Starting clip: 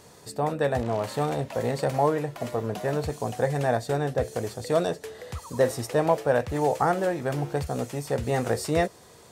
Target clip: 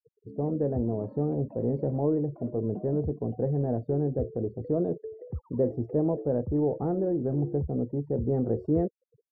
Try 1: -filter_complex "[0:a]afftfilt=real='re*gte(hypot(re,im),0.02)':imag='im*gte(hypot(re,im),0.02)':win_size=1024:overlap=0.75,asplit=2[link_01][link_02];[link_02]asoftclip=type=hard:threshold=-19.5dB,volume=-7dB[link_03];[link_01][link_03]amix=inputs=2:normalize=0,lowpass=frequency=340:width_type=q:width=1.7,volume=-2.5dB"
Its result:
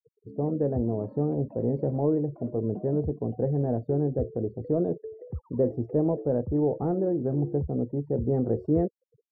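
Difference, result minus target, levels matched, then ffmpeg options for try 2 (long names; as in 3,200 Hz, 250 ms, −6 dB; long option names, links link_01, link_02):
hard clipping: distortion −8 dB
-filter_complex "[0:a]afftfilt=real='re*gte(hypot(re,im),0.02)':imag='im*gte(hypot(re,im),0.02)':win_size=1024:overlap=0.75,asplit=2[link_01][link_02];[link_02]asoftclip=type=hard:threshold=-29dB,volume=-7dB[link_03];[link_01][link_03]amix=inputs=2:normalize=0,lowpass=frequency=340:width_type=q:width=1.7,volume=-2.5dB"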